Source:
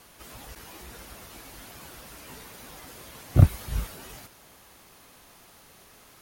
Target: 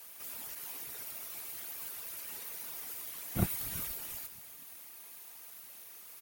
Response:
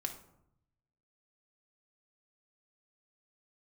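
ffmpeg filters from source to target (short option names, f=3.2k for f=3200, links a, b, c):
-filter_complex "[0:a]equalizer=f=2.3k:t=o:w=0.77:g=3.5,afftfilt=real='hypot(re,im)*cos(2*PI*random(0))':imag='hypot(re,im)*sin(2*PI*random(1))':win_size=512:overlap=0.75,aemphasis=mode=production:type=bsi,asplit=2[a][b];[b]asplit=5[c][d][e][f][g];[c]adelay=238,afreqshift=-72,volume=-21.5dB[h];[d]adelay=476,afreqshift=-144,volume=-26.1dB[i];[e]adelay=714,afreqshift=-216,volume=-30.7dB[j];[f]adelay=952,afreqshift=-288,volume=-35.2dB[k];[g]adelay=1190,afreqshift=-360,volume=-39.8dB[l];[h][i][j][k][l]amix=inputs=5:normalize=0[m];[a][m]amix=inputs=2:normalize=0,volume=-2dB"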